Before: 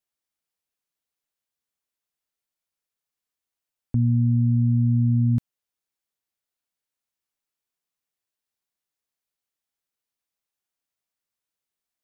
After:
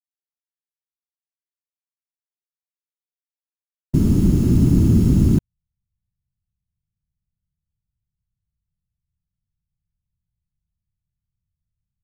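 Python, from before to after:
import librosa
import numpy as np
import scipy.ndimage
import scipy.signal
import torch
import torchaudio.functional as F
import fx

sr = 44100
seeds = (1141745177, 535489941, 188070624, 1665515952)

y = fx.delta_hold(x, sr, step_db=-36.0)
y = fx.whisperise(y, sr, seeds[0])
y = y * 10.0 ** (5.0 / 20.0)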